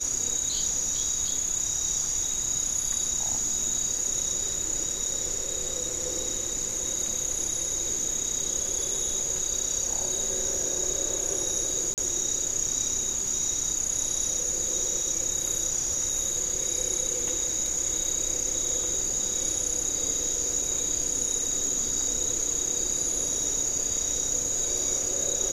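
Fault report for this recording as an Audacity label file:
11.940000	11.980000	gap 38 ms

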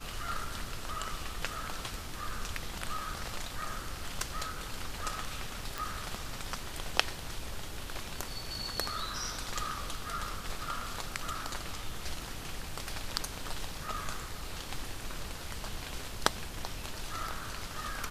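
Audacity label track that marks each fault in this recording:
5.780000	5.780000	pop

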